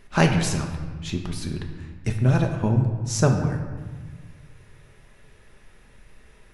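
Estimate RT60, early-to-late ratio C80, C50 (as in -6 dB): 1.4 s, 8.0 dB, 6.5 dB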